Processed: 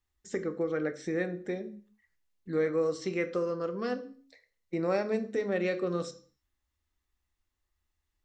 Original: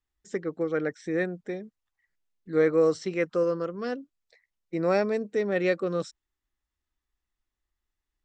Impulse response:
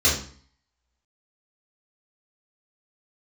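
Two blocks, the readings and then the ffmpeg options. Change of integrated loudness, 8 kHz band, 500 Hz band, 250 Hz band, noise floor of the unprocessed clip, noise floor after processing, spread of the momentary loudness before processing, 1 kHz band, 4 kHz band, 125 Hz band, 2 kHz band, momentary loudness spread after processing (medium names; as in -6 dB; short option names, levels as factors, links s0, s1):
-4.5 dB, no reading, -4.5 dB, -3.5 dB, under -85 dBFS, -83 dBFS, 13 LU, -4.0 dB, -2.5 dB, -3.0 dB, -4.5 dB, 9 LU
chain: -filter_complex "[0:a]acompressor=threshold=0.0224:ratio=2,asplit=2[s0][s1];[1:a]atrim=start_sample=2205,afade=t=out:st=0.39:d=0.01,atrim=end_sample=17640[s2];[s1][s2]afir=irnorm=-1:irlink=0,volume=0.0562[s3];[s0][s3]amix=inputs=2:normalize=0,volume=1.26"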